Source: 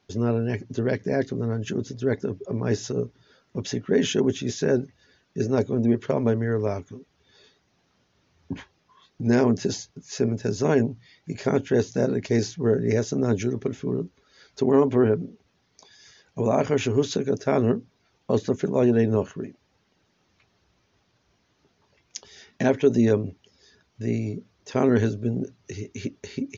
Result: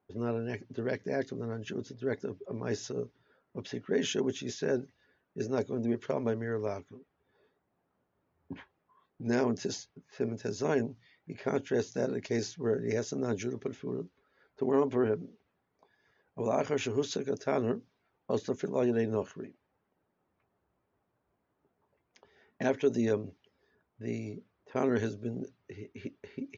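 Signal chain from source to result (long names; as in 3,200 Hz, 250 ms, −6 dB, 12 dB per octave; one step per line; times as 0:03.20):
low-pass that shuts in the quiet parts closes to 1,100 Hz, open at −20.5 dBFS
low-shelf EQ 230 Hz −8.5 dB
level −6 dB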